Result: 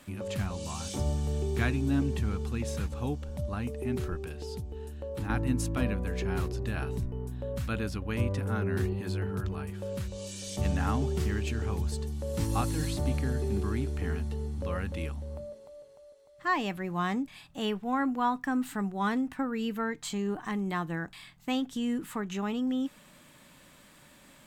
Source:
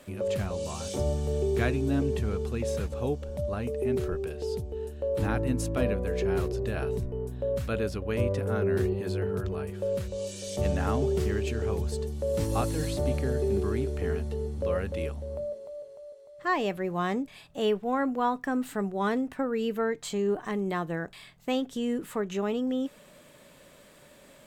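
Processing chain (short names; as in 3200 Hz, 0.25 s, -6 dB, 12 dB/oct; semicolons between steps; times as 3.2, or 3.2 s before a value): band shelf 500 Hz -8.5 dB 1 oct; 4.34–5.3 compressor 2.5:1, threshold -34 dBFS, peak gain reduction 7.5 dB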